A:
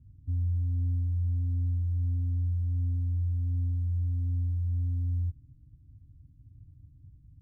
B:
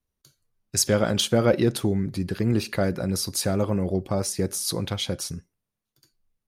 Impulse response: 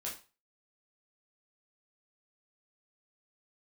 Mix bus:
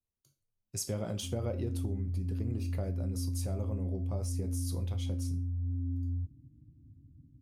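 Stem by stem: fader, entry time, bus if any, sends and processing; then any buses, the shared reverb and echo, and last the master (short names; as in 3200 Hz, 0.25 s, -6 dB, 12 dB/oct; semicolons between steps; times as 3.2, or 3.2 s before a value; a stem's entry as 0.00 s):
-2.5 dB, 0.95 s, no send, AGC gain up to 11.5 dB; band-pass 300 Hz, Q 1.3
-15.0 dB, 0.00 s, send -4 dB, fifteen-band EQ 100 Hz +6 dB, 1600 Hz -10 dB, 4000 Hz -7 dB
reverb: on, RT60 0.35 s, pre-delay 7 ms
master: compressor, threshold -30 dBFS, peak gain reduction 6.5 dB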